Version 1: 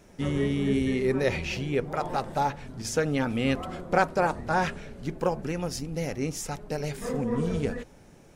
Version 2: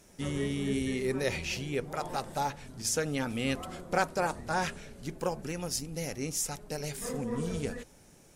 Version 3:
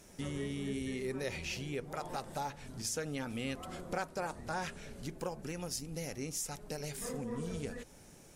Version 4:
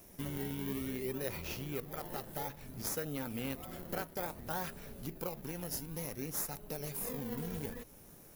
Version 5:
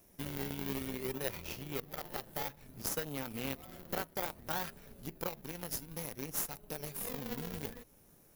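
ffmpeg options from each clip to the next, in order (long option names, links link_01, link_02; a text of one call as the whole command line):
ffmpeg -i in.wav -af "equalizer=frequency=11000:width=0.34:gain=12.5,volume=-6dB" out.wav
ffmpeg -i in.wav -af "acompressor=threshold=-42dB:ratio=2,volume=1dB" out.wav
ffmpeg -i in.wav -filter_complex "[0:a]asplit=2[link_01][link_02];[link_02]acrusher=samples=25:mix=1:aa=0.000001:lfo=1:lforange=25:lforate=0.57,volume=-3.5dB[link_03];[link_01][link_03]amix=inputs=2:normalize=0,aexciter=amount=4.2:drive=8.9:freq=11000,volume=-5dB" out.wav
ffmpeg -i in.wav -af "aeval=exprs='0.1*(cos(1*acos(clip(val(0)/0.1,-1,1)))-cos(1*PI/2))+0.0355*(cos(2*acos(clip(val(0)/0.1,-1,1)))-cos(2*PI/2))+0.0112*(cos(3*acos(clip(val(0)/0.1,-1,1)))-cos(3*PI/2))+0.00562*(cos(4*acos(clip(val(0)/0.1,-1,1)))-cos(4*PI/2))+0.00708*(cos(7*acos(clip(val(0)/0.1,-1,1)))-cos(7*PI/2))':channel_layout=same,asoftclip=type=tanh:threshold=-27.5dB,volume=8.5dB" out.wav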